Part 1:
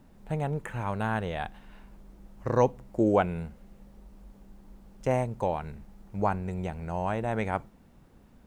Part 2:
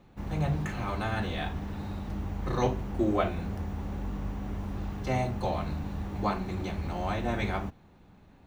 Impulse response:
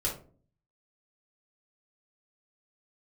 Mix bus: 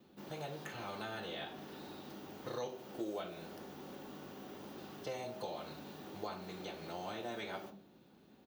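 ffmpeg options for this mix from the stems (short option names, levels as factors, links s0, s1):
-filter_complex "[0:a]highpass=130,volume=0.376[s0];[1:a]highpass=f=200:w=0.5412,highpass=f=200:w=1.3066,highshelf=f=2100:g=10,adelay=2,volume=0.501,asplit=2[s1][s2];[s2]volume=0.316[s3];[2:a]atrim=start_sample=2205[s4];[s3][s4]afir=irnorm=-1:irlink=0[s5];[s0][s1][s5]amix=inputs=3:normalize=0,equalizer=f=1000:t=o:w=1:g=-5,equalizer=f=2000:t=o:w=1:g=-8,equalizer=f=8000:t=o:w=1:g=-9,acrossover=split=470|3400[s6][s7][s8];[s6]acompressor=threshold=0.00316:ratio=4[s9];[s7]acompressor=threshold=0.00794:ratio=4[s10];[s8]acompressor=threshold=0.00158:ratio=4[s11];[s9][s10][s11]amix=inputs=3:normalize=0"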